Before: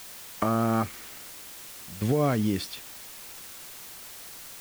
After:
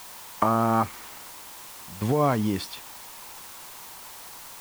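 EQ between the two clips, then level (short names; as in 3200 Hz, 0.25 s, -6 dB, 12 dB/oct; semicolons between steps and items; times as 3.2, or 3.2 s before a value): bell 940 Hz +11 dB 0.66 oct; 0.0 dB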